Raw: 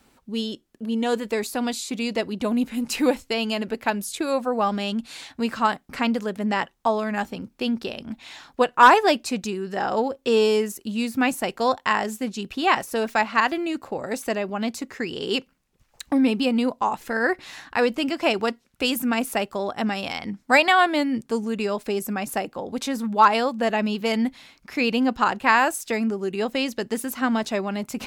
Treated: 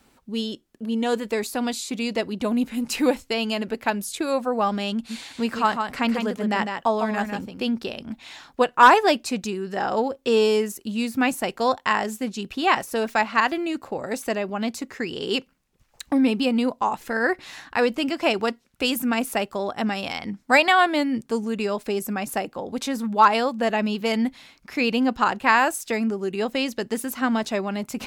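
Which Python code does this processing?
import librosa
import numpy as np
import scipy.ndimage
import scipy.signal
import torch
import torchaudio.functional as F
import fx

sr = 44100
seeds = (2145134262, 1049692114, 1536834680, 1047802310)

y = fx.echo_single(x, sr, ms=153, db=-6.0, at=(5.09, 7.62), fade=0.02)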